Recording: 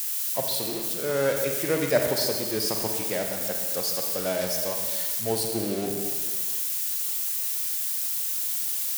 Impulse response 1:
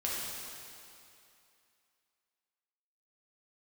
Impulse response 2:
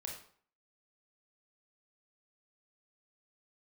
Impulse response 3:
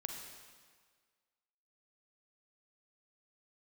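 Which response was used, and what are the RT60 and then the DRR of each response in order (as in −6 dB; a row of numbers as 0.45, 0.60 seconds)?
3; 2.6, 0.55, 1.7 seconds; −6.5, −0.5, 2.5 decibels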